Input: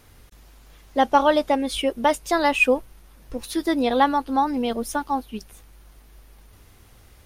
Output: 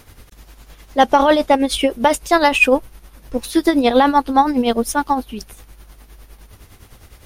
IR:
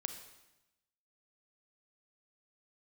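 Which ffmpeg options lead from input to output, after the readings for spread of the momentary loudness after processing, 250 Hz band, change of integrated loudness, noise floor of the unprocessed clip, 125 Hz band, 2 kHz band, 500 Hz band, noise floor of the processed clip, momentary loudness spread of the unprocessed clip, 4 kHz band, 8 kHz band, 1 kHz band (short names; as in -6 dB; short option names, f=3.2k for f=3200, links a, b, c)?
10 LU, +7.0 dB, +6.0 dB, -52 dBFS, n/a, +6.0 dB, +6.0 dB, -47 dBFS, 11 LU, +6.5 dB, +7.5 dB, +5.5 dB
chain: -af "tremolo=f=9.8:d=0.64,aeval=exprs='0.562*(cos(1*acos(clip(val(0)/0.562,-1,1)))-cos(1*PI/2))+0.0501*(cos(2*acos(clip(val(0)/0.562,-1,1)))-cos(2*PI/2))+0.0126*(cos(3*acos(clip(val(0)/0.562,-1,1)))-cos(3*PI/2))':c=same,apsyclip=12.5dB,volume=-2dB"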